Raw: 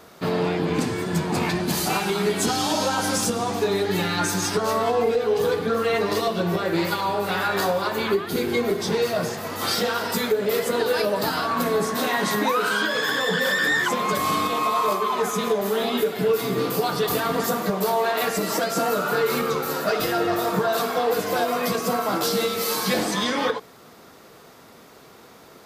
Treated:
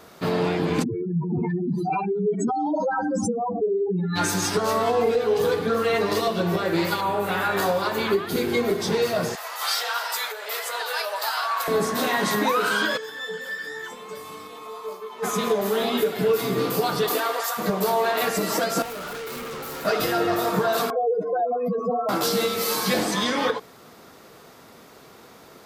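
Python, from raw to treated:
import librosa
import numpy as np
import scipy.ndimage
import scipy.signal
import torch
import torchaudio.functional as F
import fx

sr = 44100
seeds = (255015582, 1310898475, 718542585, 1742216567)

y = fx.spec_expand(x, sr, power=4.0, at=(0.82, 4.15), fade=0.02)
y = fx.peak_eq(y, sr, hz=4800.0, db=fx.line((7.0, -11.5), (7.65, -4.5)), octaves=0.72, at=(7.0, 7.65), fade=0.02)
y = fx.highpass(y, sr, hz=720.0, slope=24, at=(9.35, 11.68))
y = fx.comb_fb(y, sr, f0_hz=440.0, decay_s=0.32, harmonics='all', damping=0.0, mix_pct=90, at=(12.96, 15.22), fade=0.02)
y = fx.highpass(y, sr, hz=fx.line((17.08, 220.0), (17.57, 890.0)), slope=24, at=(17.08, 17.57), fade=0.02)
y = fx.overload_stage(y, sr, gain_db=32.5, at=(18.82, 19.85))
y = fx.spec_expand(y, sr, power=3.1, at=(20.9, 22.09))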